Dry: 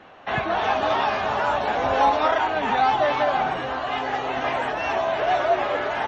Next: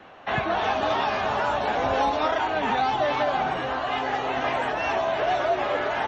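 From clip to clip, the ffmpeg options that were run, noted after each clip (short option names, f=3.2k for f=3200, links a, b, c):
-filter_complex "[0:a]acrossover=split=440|3000[a][b][c];[b]acompressor=threshold=-22dB:ratio=6[d];[a][d][c]amix=inputs=3:normalize=0"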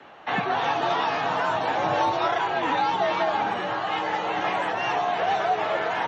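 -af "afreqshift=55"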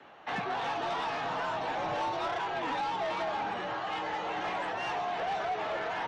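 -af "asoftclip=type=tanh:threshold=-21.5dB,volume=-6dB"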